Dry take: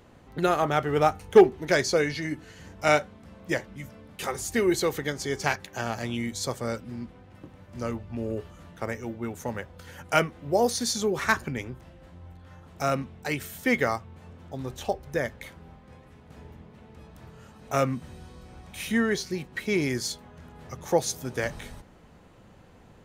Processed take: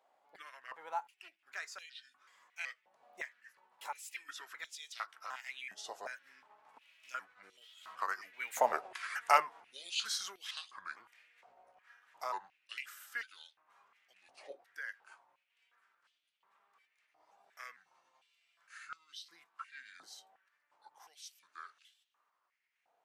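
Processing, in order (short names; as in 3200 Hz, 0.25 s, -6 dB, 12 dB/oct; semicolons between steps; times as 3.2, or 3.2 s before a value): trilling pitch shifter -4.5 st, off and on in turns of 0.416 s; Doppler pass-by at 8.8, 31 m/s, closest 8.8 m; compressor 1.5:1, threshold -55 dBFS, peak gain reduction 11.5 dB; stepped high-pass 2.8 Hz 730–3200 Hz; gain +10 dB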